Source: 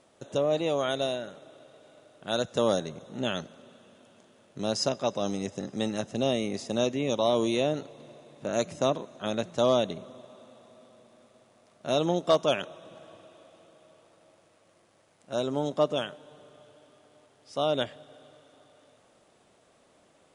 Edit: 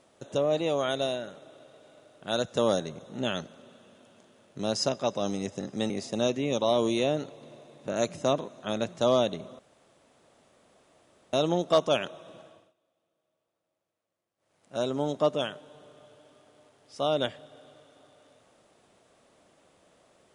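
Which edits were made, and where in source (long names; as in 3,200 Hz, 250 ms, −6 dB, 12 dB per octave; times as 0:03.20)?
0:05.90–0:06.47: remove
0:10.16–0:11.90: fill with room tone
0:12.92–0:15.33: duck −23 dB, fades 0.39 s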